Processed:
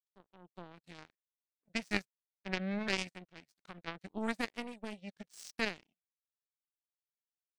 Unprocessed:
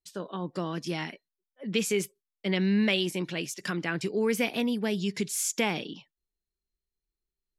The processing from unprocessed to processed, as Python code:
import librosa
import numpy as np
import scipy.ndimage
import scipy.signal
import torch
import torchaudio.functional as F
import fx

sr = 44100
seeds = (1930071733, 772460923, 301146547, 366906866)

y = fx.hpss(x, sr, part='harmonic', gain_db=4)
y = fx.formant_shift(y, sr, semitones=-4)
y = fx.power_curve(y, sr, exponent=3.0)